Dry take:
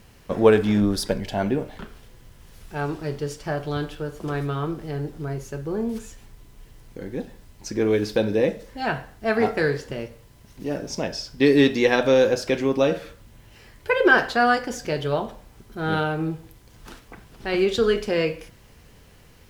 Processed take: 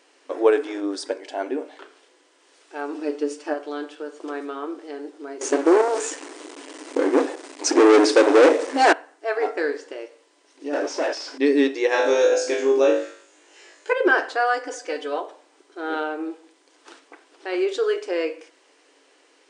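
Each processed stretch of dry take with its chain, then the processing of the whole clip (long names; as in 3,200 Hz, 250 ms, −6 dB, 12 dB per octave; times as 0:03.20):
0:02.94–0:03.54: comb filter 6.7 ms, depth 75% + hollow resonant body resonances 230/2,600 Hz, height 14 dB, ringing for 55 ms
0:05.41–0:08.93: low-shelf EQ 270 Hz +6.5 dB + leveller curve on the samples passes 5
0:10.73–0:11.38: parametric band 4,900 Hz +6 dB 2.2 octaves + mid-hump overdrive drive 28 dB, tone 1,300 Hz, clips at −12 dBFS
0:11.89–0:13.93: parametric band 6,800 Hz +10.5 dB 0.26 octaves + flutter between parallel walls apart 3.4 metres, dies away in 0.47 s
0:14.65–0:15.21: high-pass filter 400 Hz 6 dB per octave + comb filter 4 ms, depth 90%
whole clip: brick-wall band-pass 260–9,600 Hz; dynamic equaliser 3,700 Hz, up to −5 dB, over −44 dBFS, Q 1.1; level −1.5 dB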